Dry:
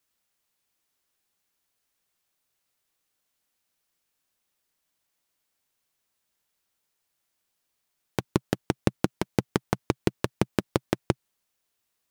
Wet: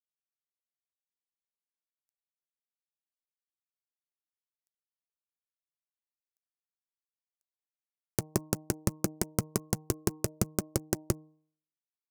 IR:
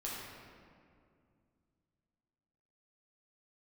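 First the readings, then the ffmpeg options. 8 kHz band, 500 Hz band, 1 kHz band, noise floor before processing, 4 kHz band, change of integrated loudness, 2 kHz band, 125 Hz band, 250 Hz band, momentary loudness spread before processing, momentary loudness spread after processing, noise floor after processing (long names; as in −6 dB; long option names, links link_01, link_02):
+8.5 dB, −6.0 dB, −8.5 dB, −79 dBFS, −4.5 dB, −3.5 dB, −8.5 dB, −3.5 dB, −5.5 dB, 4 LU, 3 LU, below −85 dBFS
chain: -af "acrusher=bits=8:dc=4:mix=0:aa=0.000001,aemphasis=mode=reproduction:type=75kf,volume=17.5dB,asoftclip=hard,volume=-17.5dB,aexciter=amount=12.1:drive=3.7:freq=5200,bandreject=frequency=154.9:width_type=h:width=4,bandreject=frequency=309.8:width_type=h:width=4,bandreject=frequency=464.7:width_type=h:width=4,bandreject=frequency=619.6:width_type=h:width=4,bandreject=frequency=774.5:width_type=h:width=4,bandreject=frequency=929.4:width_type=h:width=4,bandreject=frequency=1084.3:width_type=h:width=4"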